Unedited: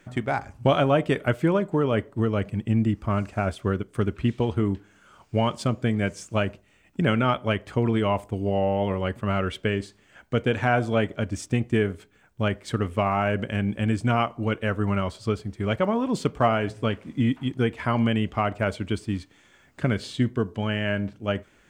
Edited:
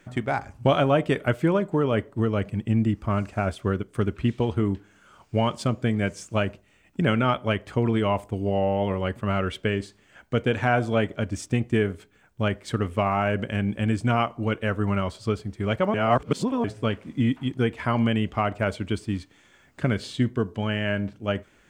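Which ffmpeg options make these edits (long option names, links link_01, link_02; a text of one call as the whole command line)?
ffmpeg -i in.wav -filter_complex "[0:a]asplit=3[link_01][link_02][link_03];[link_01]atrim=end=15.942[link_04];[link_02]atrim=start=15.938:end=16.642,asetpts=PTS-STARTPTS,areverse[link_05];[link_03]atrim=start=16.638[link_06];[link_04][link_05]acrossfade=duration=0.004:curve1=hsin:curve2=hsin[link_07];[link_07][link_06]acrossfade=duration=0.004:curve1=hsin:curve2=hsin" out.wav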